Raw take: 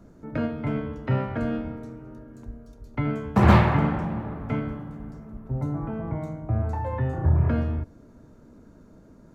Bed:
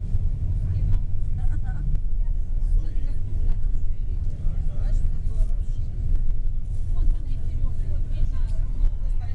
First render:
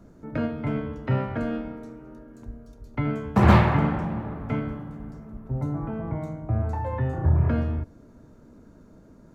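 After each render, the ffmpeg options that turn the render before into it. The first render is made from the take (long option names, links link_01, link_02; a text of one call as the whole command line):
ffmpeg -i in.wav -filter_complex "[0:a]asettb=1/sr,asplit=3[link_01][link_02][link_03];[link_01]atrim=end=1.424[link_04];[link_02]atrim=start=1.42:end=2.42,asetpts=PTS-STARTPTS,afade=type=in:duration=0.004:curve=qsin,afade=type=out:start_time=0.996:duration=0.004:curve=qsin,equalizer=frequency=97:width_type=o:width=0.77:gain=-14[link_05];[link_03]atrim=start=2.416[link_06];[link_04][link_05]acrossfade=duration=0.004:curve1=hsin:curve2=qsin[link_07];[link_07][link_06]acrossfade=duration=0.004:curve1=qsin:curve2=hsin" out.wav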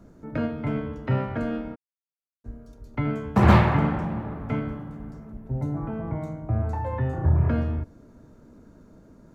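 ffmpeg -i in.wav -filter_complex "[0:a]asplit=3[link_01][link_02][link_03];[link_01]afade=type=out:start_time=1.74:duration=0.02[link_04];[link_02]acrusher=bits=3:mix=0:aa=0.5,afade=type=in:start_time=1.74:duration=0.02,afade=type=out:start_time=2.44:duration=0.02[link_05];[link_03]afade=type=in:start_time=2.44:duration=0.02[link_06];[link_04][link_05][link_06]amix=inputs=3:normalize=0,asettb=1/sr,asplit=3[link_07][link_08][link_09];[link_07]atrim=end=5.324[link_10];[link_08]atrim=start=5.32:end=5.77,asetpts=PTS-STARTPTS,afade=type=in:duration=0.004:curve=qsin,afade=type=out:start_time=0.446:duration=0.004:curve=qsin,equalizer=frequency=1200:width=4:gain=-9.5[link_11];[link_09]atrim=start=5.766[link_12];[link_10][link_11]acrossfade=duration=0.004:curve1=hsin:curve2=qsin[link_13];[link_13][link_12]acrossfade=duration=0.004:curve1=qsin:curve2=hsin" out.wav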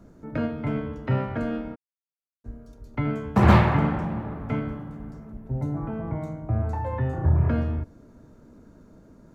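ffmpeg -i in.wav -af anull out.wav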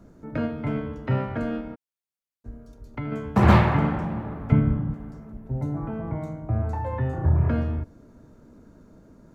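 ffmpeg -i in.wav -filter_complex "[0:a]asettb=1/sr,asplit=3[link_01][link_02][link_03];[link_01]atrim=end=1.604[link_04];[link_02]atrim=start=1.6:end=3.12,asetpts=PTS-STARTPTS,afade=type=in:duration=0.004:curve=qsin,afade=type=out:start_time=1.516:duration=0.004:curve=qsin,acompressor=threshold=-31dB:ratio=2:attack=3.2:release=140:knee=1:detection=peak[link_05];[link_03]atrim=start=3.116[link_06];[link_04][link_05]acrossfade=duration=0.004:curve1=hsin:curve2=qsin[link_07];[link_07][link_06]acrossfade=duration=0.004:curve1=qsin:curve2=hsin,asettb=1/sr,asplit=3[link_08][link_09][link_10];[link_08]atrim=end=4.524[link_11];[link_09]atrim=start=4.52:end=4.94,asetpts=PTS-STARTPTS,afade=type=in:duration=0.004:curve=qsin,afade=type=out:start_time=0.416:duration=0.004:curve=qsin,bass=frequency=250:gain=13,treble=frequency=4000:gain=-12[link_12];[link_10]atrim=start=4.936[link_13];[link_11][link_12]acrossfade=duration=0.004:curve1=hsin:curve2=qsin[link_14];[link_14][link_13]acrossfade=duration=0.004:curve1=qsin:curve2=hsin" out.wav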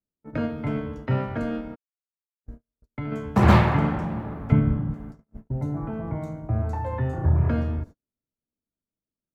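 ffmpeg -i in.wav -af "agate=range=-44dB:threshold=-37dB:ratio=16:detection=peak,adynamicequalizer=threshold=0.00501:dfrequency=3800:dqfactor=0.7:tfrequency=3800:tqfactor=0.7:attack=5:release=100:ratio=0.375:range=1.5:mode=boostabove:tftype=highshelf" out.wav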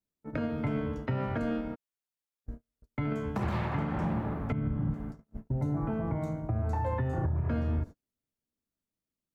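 ffmpeg -i in.wav -af "acompressor=threshold=-24dB:ratio=6,alimiter=limit=-21.5dB:level=0:latency=1:release=157" out.wav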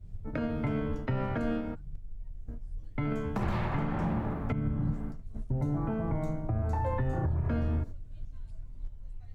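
ffmpeg -i in.wav -i bed.wav -filter_complex "[1:a]volume=-18.5dB[link_01];[0:a][link_01]amix=inputs=2:normalize=0" out.wav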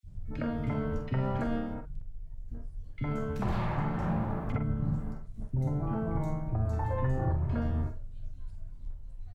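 ffmpeg -i in.wav -filter_complex "[0:a]asplit=2[link_01][link_02];[link_02]adelay=46,volume=-8dB[link_03];[link_01][link_03]amix=inputs=2:normalize=0,acrossover=split=340|2300[link_04][link_05][link_06];[link_04]adelay=30[link_07];[link_05]adelay=60[link_08];[link_07][link_08][link_06]amix=inputs=3:normalize=0" out.wav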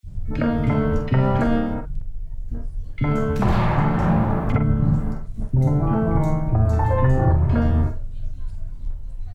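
ffmpeg -i in.wav -af "volume=12dB" out.wav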